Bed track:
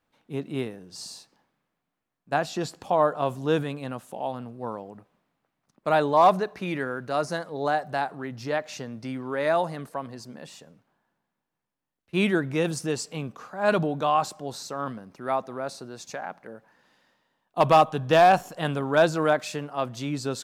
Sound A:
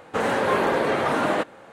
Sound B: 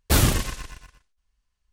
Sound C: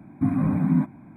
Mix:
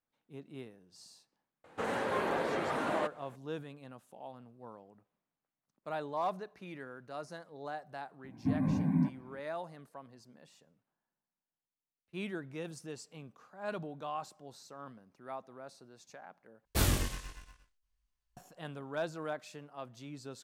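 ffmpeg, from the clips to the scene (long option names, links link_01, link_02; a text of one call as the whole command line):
ffmpeg -i bed.wav -i cue0.wav -i cue1.wav -i cue2.wav -filter_complex "[0:a]volume=-16.5dB[link_01];[3:a]asuperstop=centerf=1300:order=4:qfactor=3.7[link_02];[2:a]flanger=delay=19:depth=2.4:speed=1.2[link_03];[link_01]asplit=2[link_04][link_05];[link_04]atrim=end=16.654[link_06];[link_03]atrim=end=1.72,asetpts=PTS-STARTPTS,volume=-7dB[link_07];[link_05]atrim=start=18.366[link_08];[1:a]atrim=end=1.72,asetpts=PTS-STARTPTS,volume=-11.5dB,afade=type=in:duration=0.004:curve=hsin,afade=type=out:start_time=1.716:duration=0.004:curve=hsin,adelay=1640[link_09];[link_02]atrim=end=1.16,asetpts=PTS-STARTPTS,volume=-8.5dB,afade=type=in:duration=0.004:curve=hsin,afade=type=out:start_time=1.156:duration=0.004:curve=hsin,adelay=8240[link_10];[link_06][link_07]acrossfade=duration=0.004:curve1=hsin:curve2=hsin[link_11];[link_11][link_08]acrossfade=duration=0.004:curve1=hsin:curve2=hsin[link_12];[link_12][link_09][link_10]amix=inputs=3:normalize=0" out.wav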